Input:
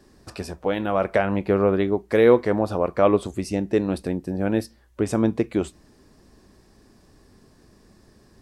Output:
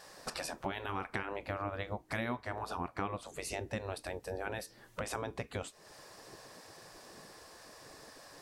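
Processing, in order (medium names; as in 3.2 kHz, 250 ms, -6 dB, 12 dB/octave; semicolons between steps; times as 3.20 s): spectral gate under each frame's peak -10 dB weak; compression 4:1, threshold -46 dBFS, peak gain reduction 22.5 dB; trim +8 dB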